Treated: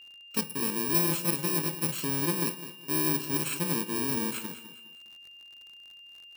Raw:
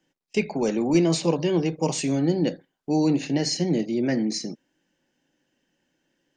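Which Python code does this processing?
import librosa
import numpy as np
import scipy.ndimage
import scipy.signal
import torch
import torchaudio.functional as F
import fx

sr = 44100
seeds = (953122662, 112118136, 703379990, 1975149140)

p1 = fx.bit_reversed(x, sr, seeds[0], block=64)
p2 = fx.dmg_crackle(p1, sr, seeds[1], per_s=59.0, level_db=-37.0)
p3 = p2 + fx.echo_feedback(p2, sr, ms=205, feedback_pct=33, wet_db=-13.0, dry=0)
p4 = p3 + 10.0 ** (-41.0 / 20.0) * np.sin(2.0 * np.pi * 2800.0 * np.arange(len(p3)) / sr)
y = F.gain(torch.from_numpy(p4), -6.5).numpy()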